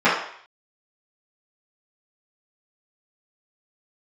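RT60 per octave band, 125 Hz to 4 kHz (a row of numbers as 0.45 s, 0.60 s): 0.35 s, 0.45 s, 0.55 s, 0.60 s, 0.65 s, 0.60 s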